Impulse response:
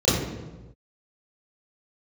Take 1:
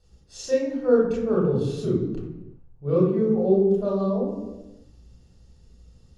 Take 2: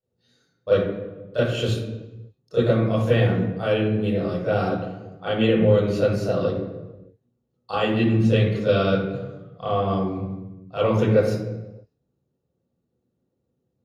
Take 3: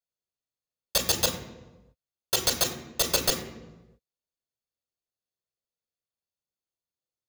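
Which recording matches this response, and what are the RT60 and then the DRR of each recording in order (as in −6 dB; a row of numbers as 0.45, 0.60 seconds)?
2; non-exponential decay, non-exponential decay, non-exponential decay; −7.0, −13.0, 3.0 decibels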